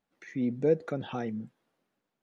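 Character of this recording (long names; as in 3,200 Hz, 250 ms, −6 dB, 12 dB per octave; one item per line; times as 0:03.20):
background noise floor −85 dBFS
spectral slope −6.0 dB per octave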